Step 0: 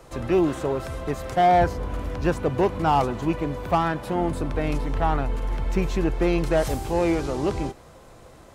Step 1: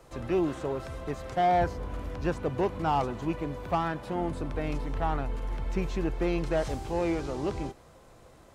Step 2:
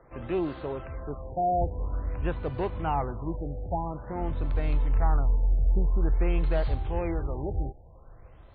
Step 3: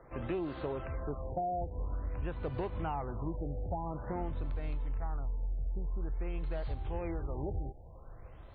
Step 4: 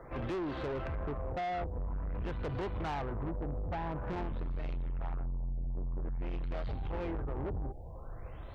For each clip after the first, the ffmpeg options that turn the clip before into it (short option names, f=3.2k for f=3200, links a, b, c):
-filter_complex "[0:a]acrossover=split=8000[a][b];[b]acompressor=threshold=-58dB:ratio=4:attack=1:release=60[c];[a][c]amix=inputs=2:normalize=0,volume=-6.5dB"
-af "asubboost=boost=4.5:cutoff=100,afftfilt=real='re*lt(b*sr/1024,830*pow(4800/830,0.5+0.5*sin(2*PI*0.49*pts/sr)))':imag='im*lt(b*sr/1024,830*pow(4800/830,0.5+0.5*sin(2*PI*0.49*pts/sr)))':win_size=1024:overlap=0.75,volume=-1.5dB"
-af "acompressor=threshold=-32dB:ratio=10"
-af "asoftclip=type=tanh:threshold=-39.5dB,volume=6.5dB"